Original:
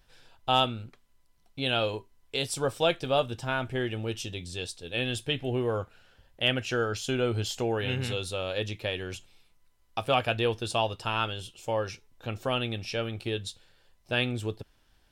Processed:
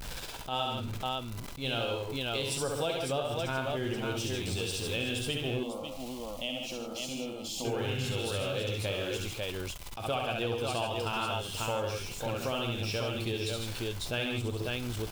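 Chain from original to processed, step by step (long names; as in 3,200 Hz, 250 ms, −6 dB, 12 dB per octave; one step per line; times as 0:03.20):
converter with a step at zero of −38.5 dBFS
parametric band 1,800 Hz −6 dB 0.23 octaves
multi-tap delay 51/68/135/156/546 ms −12.5/−3.5/−9/−9/−5 dB
downward compressor 4 to 1, threshold −34 dBFS, peak gain reduction 14 dB
0:05.63–0:07.65: phaser with its sweep stopped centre 410 Hz, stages 6
level that may rise only so fast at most 160 dB per second
level +3 dB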